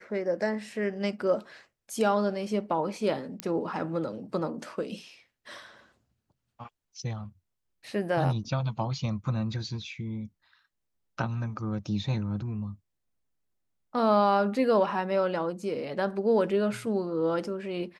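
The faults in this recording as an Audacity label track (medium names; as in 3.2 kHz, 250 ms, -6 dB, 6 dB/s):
3.400000	3.400000	pop -15 dBFS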